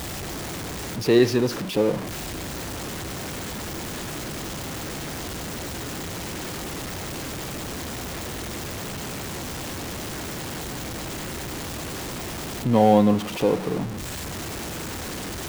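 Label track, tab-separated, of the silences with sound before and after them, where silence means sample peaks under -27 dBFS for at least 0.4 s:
1.970000	12.650000	silence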